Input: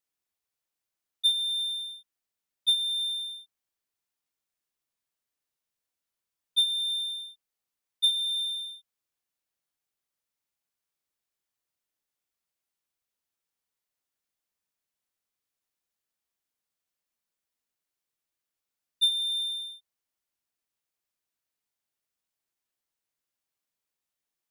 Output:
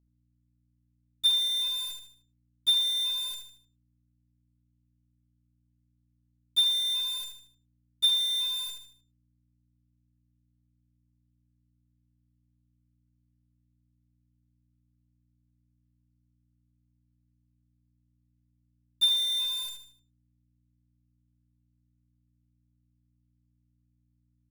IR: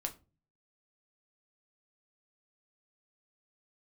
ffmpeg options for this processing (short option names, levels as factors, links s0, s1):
-af "acrusher=bits=7:dc=4:mix=0:aa=0.000001,aeval=exprs='val(0)+0.000355*(sin(2*PI*60*n/s)+sin(2*PI*2*60*n/s)/2+sin(2*PI*3*60*n/s)/3+sin(2*PI*4*60*n/s)/4+sin(2*PI*5*60*n/s)/5)':c=same,aecho=1:1:76|152|228|304:0.447|0.165|0.0612|0.0226"